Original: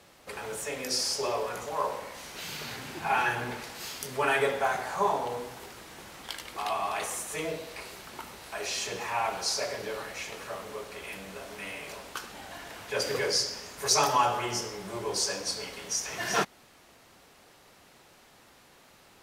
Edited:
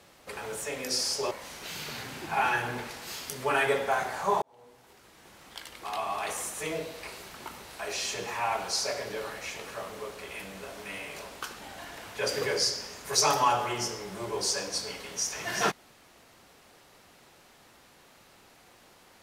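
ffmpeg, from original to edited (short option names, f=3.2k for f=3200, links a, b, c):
-filter_complex "[0:a]asplit=3[a][b][c];[a]atrim=end=1.312[d];[b]atrim=start=2.038:end=5.15,asetpts=PTS-STARTPTS,afade=t=out:st=3.108:d=0.004:c=hsin[e];[c]atrim=start=5.15,asetpts=PTS-STARTPTS,afade=t=in:d=2[f];[e][f]concat=n=2:v=0:a=1[g];[d][g]acrossfade=d=0.004:c1=hsin:c2=hsin"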